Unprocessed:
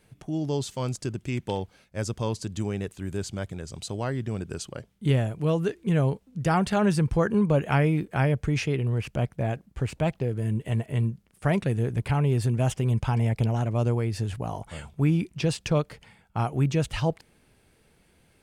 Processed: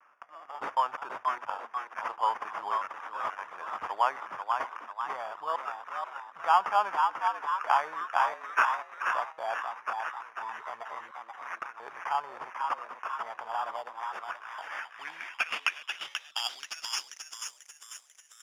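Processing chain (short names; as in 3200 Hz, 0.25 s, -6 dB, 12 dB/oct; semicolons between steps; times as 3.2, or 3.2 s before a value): HPF 56 Hz; low shelf 190 Hz +9 dB; in parallel at 0 dB: negative-ratio compressor -24 dBFS, ratio -0.5; on the sum: LFO high-pass square 0.72 Hz 860–2600 Hz; sample-and-hold 11×; 13.76–14.19 fixed phaser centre 310 Hz, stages 6; frequency-shifting echo 0.487 s, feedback 52%, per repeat +110 Hz, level -5 dB; band-pass sweep 1100 Hz -> 7400 Hz, 13.95–17.67; vibrato 0.38 Hz 23 cents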